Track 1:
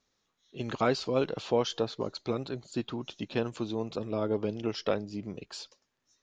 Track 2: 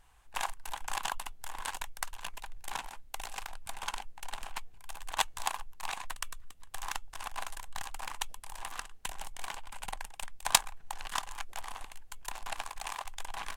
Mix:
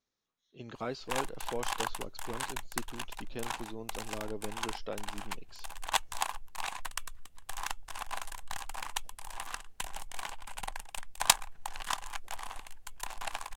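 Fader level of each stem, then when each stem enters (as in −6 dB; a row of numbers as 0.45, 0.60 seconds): −10.5, +0.5 decibels; 0.00, 0.75 seconds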